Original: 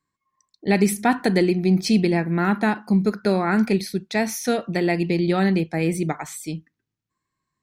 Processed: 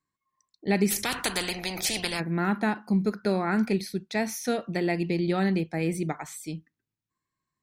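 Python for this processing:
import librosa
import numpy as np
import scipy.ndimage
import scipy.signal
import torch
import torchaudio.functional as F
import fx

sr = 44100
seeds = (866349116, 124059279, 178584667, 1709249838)

y = fx.spectral_comp(x, sr, ratio=4.0, at=(0.9, 2.19), fade=0.02)
y = y * librosa.db_to_amplitude(-5.5)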